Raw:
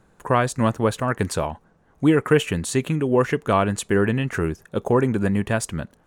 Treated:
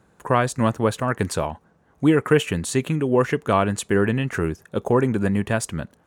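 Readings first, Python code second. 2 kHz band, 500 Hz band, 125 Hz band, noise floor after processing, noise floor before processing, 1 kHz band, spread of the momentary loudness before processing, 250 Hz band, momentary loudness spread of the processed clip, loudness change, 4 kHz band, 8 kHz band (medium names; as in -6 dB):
0.0 dB, 0.0 dB, 0.0 dB, -60 dBFS, -59 dBFS, 0.0 dB, 6 LU, 0.0 dB, 6 LU, 0.0 dB, 0.0 dB, 0.0 dB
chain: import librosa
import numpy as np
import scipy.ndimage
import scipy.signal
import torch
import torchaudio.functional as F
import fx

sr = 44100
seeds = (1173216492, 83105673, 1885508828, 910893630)

y = scipy.signal.sosfilt(scipy.signal.butter(2, 55.0, 'highpass', fs=sr, output='sos'), x)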